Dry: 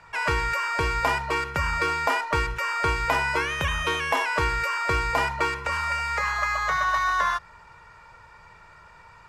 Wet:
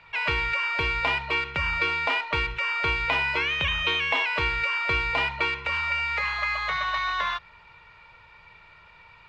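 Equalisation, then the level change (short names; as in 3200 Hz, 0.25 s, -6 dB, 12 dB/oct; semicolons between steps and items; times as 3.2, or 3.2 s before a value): air absorption 200 m; band shelf 3000 Hz +11 dB 1.2 oct; high shelf 6100 Hz +11.5 dB; -4.0 dB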